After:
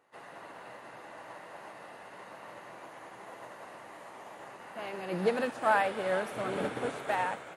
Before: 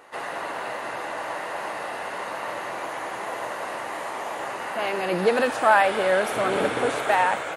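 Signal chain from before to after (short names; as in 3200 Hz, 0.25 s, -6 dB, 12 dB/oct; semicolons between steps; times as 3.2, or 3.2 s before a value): bell 150 Hz +7.5 dB 1.9 oct; split-band echo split 340 Hz, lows 86 ms, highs 0.477 s, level -15 dB; upward expander 1.5:1, over -37 dBFS; gain -8.5 dB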